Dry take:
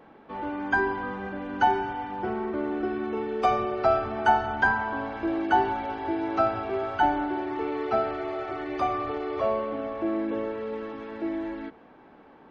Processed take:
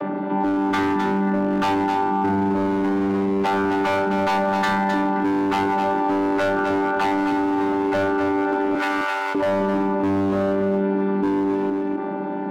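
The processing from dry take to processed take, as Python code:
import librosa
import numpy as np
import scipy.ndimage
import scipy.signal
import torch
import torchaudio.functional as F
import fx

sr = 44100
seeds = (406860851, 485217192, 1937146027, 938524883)

y = fx.chord_vocoder(x, sr, chord='bare fifth', root=55)
y = fx.high_shelf(y, sr, hz=4200.0, db=-10.0)
y = y + 10.0 ** (-17.5 / 20.0) * np.pad(y, (int(263 * sr / 1000.0), 0))[:len(y)]
y = np.clip(y, -10.0 ** (-27.5 / 20.0), 10.0 ** (-27.5 / 20.0))
y = fx.rider(y, sr, range_db=4, speed_s=0.5)
y = fx.highpass(y, sr, hz=1300.0, slope=12, at=(8.75, 9.35))
y = fx.doubler(y, sr, ms=32.0, db=-12.0)
y = y + 10.0 ** (-8.5 / 20.0) * np.pad(y, (int(260 * sr / 1000.0), 0))[:len(y)]
y = fx.env_flatten(y, sr, amount_pct=70)
y = y * 10.0 ** (8.5 / 20.0)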